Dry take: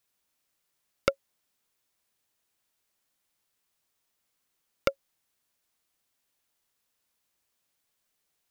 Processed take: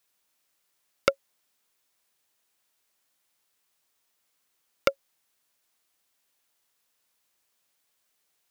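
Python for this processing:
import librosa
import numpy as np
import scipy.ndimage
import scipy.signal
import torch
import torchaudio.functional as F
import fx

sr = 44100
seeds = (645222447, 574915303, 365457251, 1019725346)

y = fx.low_shelf(x, sr, hz=240.0, db=-8.0)
y = F.gain(torch.from_numpy(y), 4.0).numpy()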